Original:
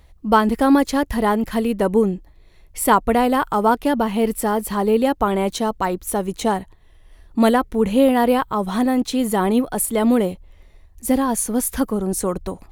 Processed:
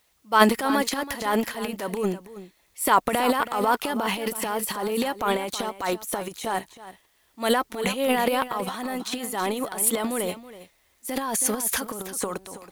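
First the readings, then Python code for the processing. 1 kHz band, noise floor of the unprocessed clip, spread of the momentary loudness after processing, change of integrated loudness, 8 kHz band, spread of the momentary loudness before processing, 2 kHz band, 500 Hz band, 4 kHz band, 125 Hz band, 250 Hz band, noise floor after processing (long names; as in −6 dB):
−4.5 dB, −49 dBFS, 10 LU, −6.0 dB, −0.5 dB, 8 LU, −0.5 dB, −7.0 dB, +1.0 dB, −9.5 dB, −10.5 dB, −65 dBFS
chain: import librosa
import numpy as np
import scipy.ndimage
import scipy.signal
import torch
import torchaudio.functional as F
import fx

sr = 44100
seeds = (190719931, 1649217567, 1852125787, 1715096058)

p1 = fx.highpass(x, sr, hz=1200.0, slope=6)
p2 = fx.transient(p1, sr, attack_db=-5, sustain_db=12)
p3 = fx.quant_dither(p2, sr, seeds[0], bits=8, dither='triangular')
p4 = p2 + (p3 * librosa.db_to_amplitude(-10.0))
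p5 = p4 + 10.0 ** (-10.5 / 20.0) * np.pad(p4, (int(324 * sr / 1000.0), 0))[:len(p4)]
p6 = fx.upward_expand(p5, sr, threshold_db=-36.0, expansion=1.5)
y = p6 * librosa.db_to_amplitude(1.0)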